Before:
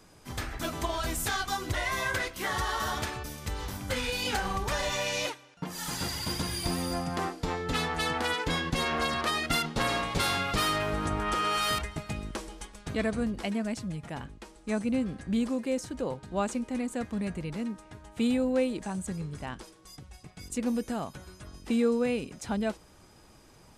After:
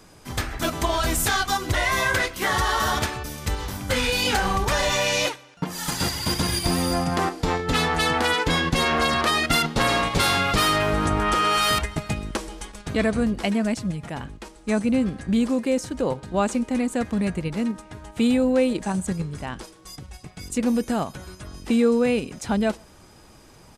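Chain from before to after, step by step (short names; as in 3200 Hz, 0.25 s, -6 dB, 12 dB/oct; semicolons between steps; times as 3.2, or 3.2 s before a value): in parallel at -1.5 dB: level quantiser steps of 17 dB; on the sum: outdoor echo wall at 22 m, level -30 dB; gain +4.5 dB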